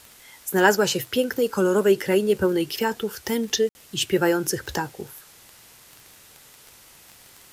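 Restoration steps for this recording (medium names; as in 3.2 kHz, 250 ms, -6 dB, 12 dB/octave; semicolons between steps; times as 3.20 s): de-click; room tone fill 3.69–3.75 s; noise reduction 17 dB, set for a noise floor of -51 dBFS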